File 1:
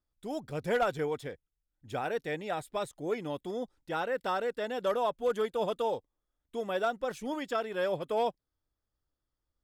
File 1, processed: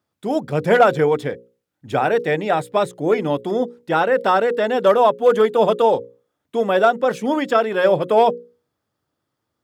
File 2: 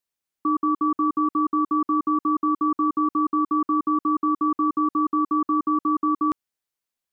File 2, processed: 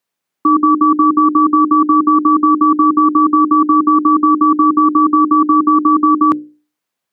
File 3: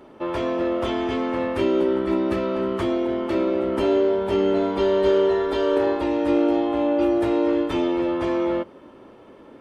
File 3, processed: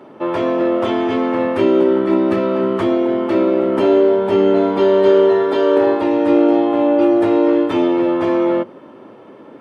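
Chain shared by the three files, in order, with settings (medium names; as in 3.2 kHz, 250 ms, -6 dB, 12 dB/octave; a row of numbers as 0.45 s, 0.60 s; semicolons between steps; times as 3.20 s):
high-pass 110 Hz 24 dB/octave; treble shelf 3.2 kHz -8.5 dB; hum notches 60/120/180/240/300/360/420/480/540 Hz; peak normalisation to -2 dBFS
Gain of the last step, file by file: +16.0 dB, +13.0 dB, +7.5 dB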